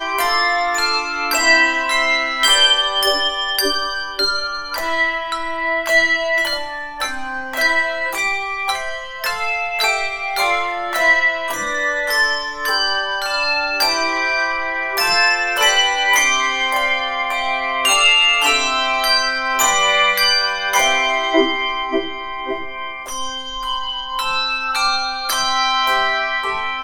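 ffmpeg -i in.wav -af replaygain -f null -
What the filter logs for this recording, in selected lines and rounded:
track_gain = -4.1 dB
track_peak = 0.598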